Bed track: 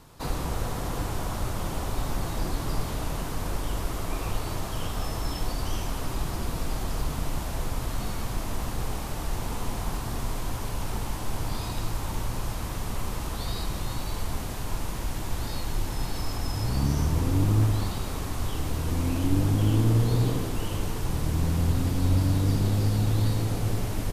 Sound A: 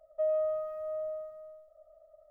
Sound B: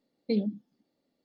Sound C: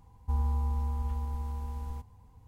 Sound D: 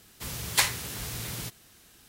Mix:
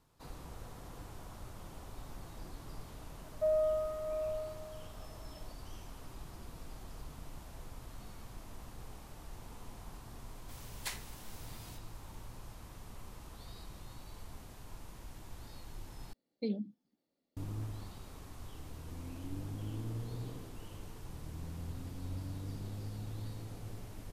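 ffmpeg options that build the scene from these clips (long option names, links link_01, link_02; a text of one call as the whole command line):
ffmpeg -i bed.wav -i cue0.wav -i cue1.wav -i cue2.wav -i cue3.wav -filter_complex "[0:a]volume=-18.5dB,asplit=2[link_01][link_02];[link_01]atrim=end=16.134[link_03];[2:a]atrim=end=1.24,asetpts=PTS-STARTPTS,volume=-8dB[link_04];[link_02]atrim=start=17.366[link_05];[1:a]atrim=end=2.3,asetpts=PTS-STARTPTS,volume=-1dB,afade=type=in:duration=0.004:curve=hsin,afade=type=out:start_time=2.296:duration=0.004:curve=hsin,adelay=3230[link_06];[4:a]atrim=end=2.08,asetpts=PTS-STARTPTS,volume=-17.5dB,afade=type=in:duration=0.004:curve=hsin,afade=type=out:start_time=2.076:duration=0.004:curve=hsin,adelay=10280[link_07];[link_03][link_04]acrossfade=duration=0.004:curve1=hsin:curve2=hsin[link_08];[link_08][link_05]acrossfade=duration=0.004:curve1=hsin:curve2=hsin[link_09];[link_09][link_06][link_07]amix=inputs=3:normalize=0" out.wav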